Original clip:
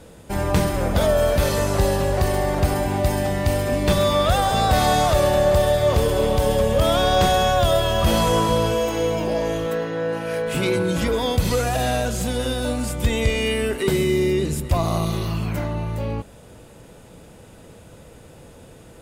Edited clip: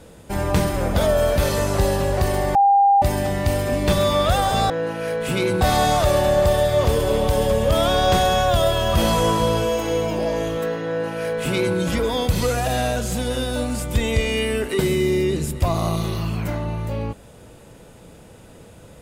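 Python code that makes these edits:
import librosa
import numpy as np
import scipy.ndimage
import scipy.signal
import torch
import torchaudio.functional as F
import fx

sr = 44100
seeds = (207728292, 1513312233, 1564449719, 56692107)

y = fx.edit(x, sr, fx.bleep(start_s=2.55, length_s=0.47, hz=800.0, db=-11.0),
    fx.duplicate(start_s=9.96, length_s=0.91, to_s=4.7), tone=tone)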